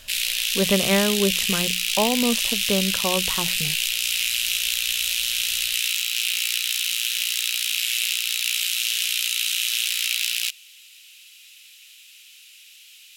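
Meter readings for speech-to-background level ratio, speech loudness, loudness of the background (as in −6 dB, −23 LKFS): −4.0 dB, −25.5 LKFS, −21.5 LKFS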